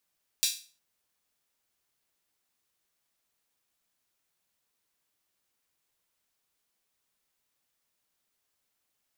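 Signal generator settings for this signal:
open synth hi-hat length 0.36 s, high-pass 3,800 Hz, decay 0.37 s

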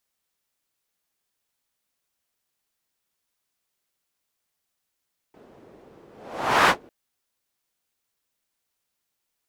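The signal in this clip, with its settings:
pass-by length 1.55 s, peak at 0:01.35, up 0.64 s, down 0.11 s, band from 400 Hz, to 1,200 Hz, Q 1.4, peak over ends 35 dB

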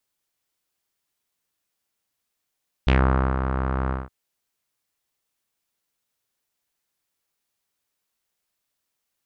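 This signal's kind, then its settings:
subtractive voice saw C2 12 dB per octave, low-pass 1,300 Hz, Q 2.7, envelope 1.5 octaves, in 0.15 s, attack 3.1 ms, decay 0.50 s, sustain −8 dB, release 0.19 s, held 1.03 s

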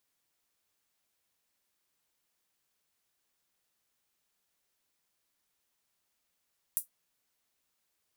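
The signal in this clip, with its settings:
closed synth hi-hat, high-pass 10,000 Hz, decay 0.13 s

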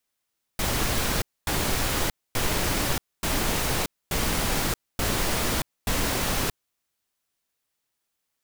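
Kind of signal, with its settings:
noise bursts pink, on 0.63 s, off 0.25 s, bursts 7, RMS −25 dBFS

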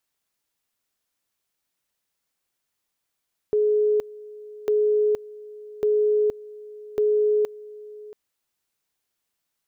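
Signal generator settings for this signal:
tone at two levels in turn 422 Hz −17 dBFS, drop 20.5 dB, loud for 0.47 s, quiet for 0.68 s, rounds 4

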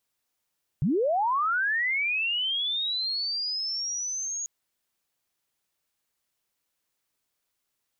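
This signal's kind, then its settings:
glide linear 120 Hz → 6,700 Hz −21 dBFS → −29.5 dBFS 3.64 s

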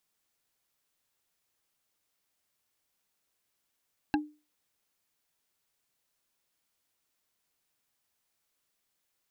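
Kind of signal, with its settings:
struck wood bar, lowest mode 300 Hz, decay 0.31 s, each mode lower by 2.5 dB, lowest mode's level −21.5 dB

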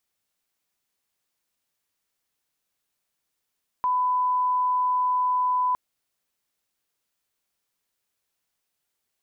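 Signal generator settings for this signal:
line-up tone −20 dBFS 1.91 s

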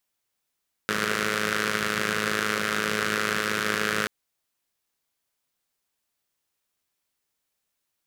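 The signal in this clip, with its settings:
pulse-train model of a four-cylinder engine, steady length 3.18 s, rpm 3,200, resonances 200/420/1,400 Hz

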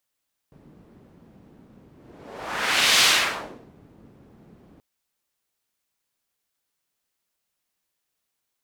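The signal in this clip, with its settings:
pass-by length 4.28 s, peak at 0:02.51, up 1.17 s, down 0.74 s, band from 210 Hz, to 3,500 Hz, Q 1, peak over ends 35 dB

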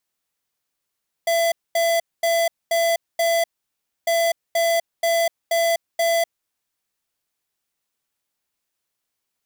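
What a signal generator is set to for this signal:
beeps in groups square 671 Hz, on 0.25 s, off 0.23 s, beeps 5, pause 0.63 s, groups 2, −19 dBFS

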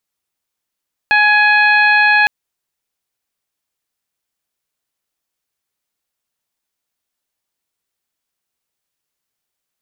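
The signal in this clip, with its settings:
steady harmonic partials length 1.16 s, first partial 838 Hz, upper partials 4.5/0.5/−13.5/−10.5 dB, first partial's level −15 dB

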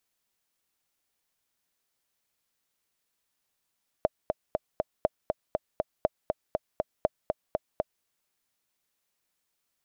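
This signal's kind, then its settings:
click track 240 BPM, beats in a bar 4, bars 4, 623 Hz, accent 4 dB −9.5 dBFS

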